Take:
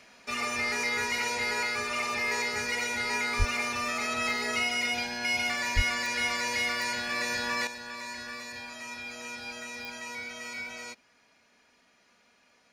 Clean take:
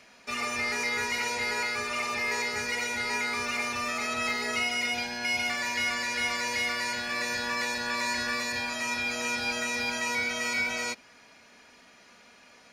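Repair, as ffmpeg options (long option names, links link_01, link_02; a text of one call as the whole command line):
ffmpeg -i in.wav -filter_complex "[0:a]adeclick=threshold=4,asplit=3[link_01][link_02][link_03];[link_01]afade=type=out:start_time=3.38:duration=0.02[link_04];[link_02]highpass=frequency=140:width=0.5412,highpass=frequency=140:width=1.3066,afade=type=in:start_time=3.38:duration=0.02,afade=type=out:start_time=3.5:duration=0.02[link_05];[link_03]afade=type=in:start_time=3.5:duration=0.02[link_06];[link_04][link_05][link_06]amix=inputs=3:normalize=0,asplit=3[link_07][link_08][link_09];[link_07]afade=type=out:start_time=5.75:duration=0.02[link_10];[link_08]highpass=frequency=140:width=0.5412,highpass=frequency=140:width=1.3066,afade=type=in:start_time=5.75:duration=0.02,afade=type=out:start_time=5.87:duration=0.02[link_11];[link_09]afade=type=in:start_time=5.87:duration=0.02[link_12];[link_10][link_11][link_12]amix=inputs=3:normalize=0,asetnsamples=nb_out_samples=441:pad=0,asendcmd='7.67 volume volume 9.5dB',volume=0dB" out.wav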